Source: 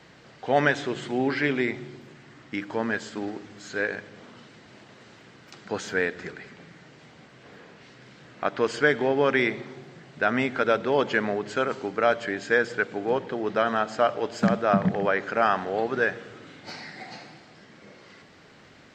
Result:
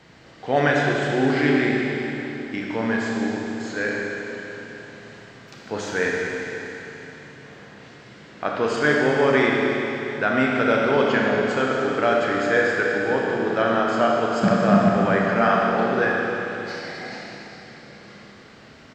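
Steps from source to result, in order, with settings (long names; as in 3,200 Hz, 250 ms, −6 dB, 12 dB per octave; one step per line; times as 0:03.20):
low-shelf EQ 160 Hz +4 dB
far-end echo of a speakerphone 110 ms, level −22 dB
four-comb reverb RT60 3.5 s, combs from 27 ms, DRR −2.5 dB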